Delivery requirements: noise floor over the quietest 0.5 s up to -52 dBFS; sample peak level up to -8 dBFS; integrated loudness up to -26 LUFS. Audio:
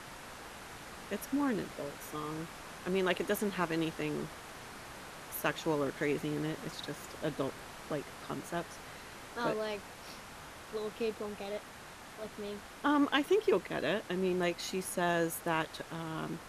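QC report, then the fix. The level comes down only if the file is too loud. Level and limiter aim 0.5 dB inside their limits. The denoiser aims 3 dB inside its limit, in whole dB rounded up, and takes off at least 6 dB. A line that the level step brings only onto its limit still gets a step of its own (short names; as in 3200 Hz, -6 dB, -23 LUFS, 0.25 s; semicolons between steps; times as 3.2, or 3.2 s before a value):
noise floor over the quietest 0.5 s -50 dBFS: fail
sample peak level -16.0 dBFS: OK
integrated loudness -35.5 LUFS: OK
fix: denoiser 6 dB, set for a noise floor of -50 dBFS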